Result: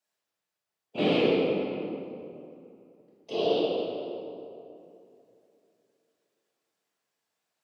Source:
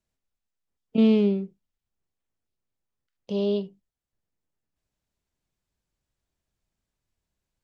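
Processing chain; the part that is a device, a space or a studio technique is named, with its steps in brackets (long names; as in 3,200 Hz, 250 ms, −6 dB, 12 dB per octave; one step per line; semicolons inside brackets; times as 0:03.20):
whispering ghost (random phases in short frames; high-pass filter 540 Hz 12 dB per octave; convolution reverb RT60 2.9 s, pre-delay 3 ms, DRR −6 dB)
dynamic equaliser 1,800 Hz, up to +5 dB, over −50 dBFS, Q 1.3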